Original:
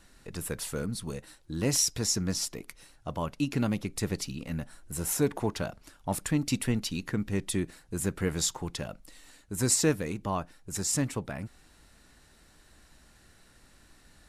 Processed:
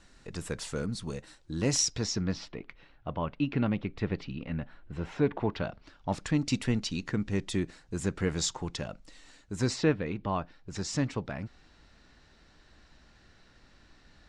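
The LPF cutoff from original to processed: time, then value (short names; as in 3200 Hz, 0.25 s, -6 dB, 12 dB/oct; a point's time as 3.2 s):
LPF 24 dB/oct
1.75 s 7800 Hz
2.54 s 3300 Hz
5.33 s 3300 Hz
6.47 s 7100 Hz
9.54 s 7100 Hz
9.91 s 3400 Hz
10.87 s 5600 Hz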